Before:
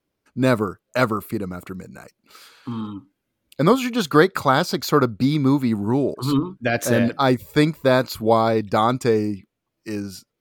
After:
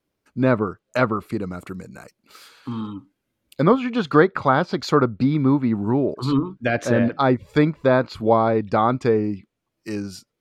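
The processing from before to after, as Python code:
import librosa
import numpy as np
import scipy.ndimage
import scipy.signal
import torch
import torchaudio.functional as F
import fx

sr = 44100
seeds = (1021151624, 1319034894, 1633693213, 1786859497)

y = fx.env_lowpass_down(x, sr, base_hz=2100.0, full_db=-15.5)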